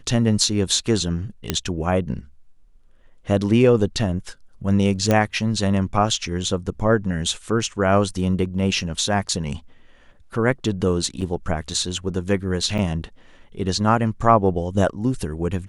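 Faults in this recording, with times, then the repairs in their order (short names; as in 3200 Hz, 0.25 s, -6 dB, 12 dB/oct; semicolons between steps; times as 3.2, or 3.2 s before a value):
1.5 pop -5 dBFS
5.11 pop -6 dBFS
11.21–11.22 gap 6.6 ms
12.78–12.79 gap 6.2 ms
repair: de-click; interpolate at 11.21, 6.6 ms; interpolate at 12.78, 6.2 ms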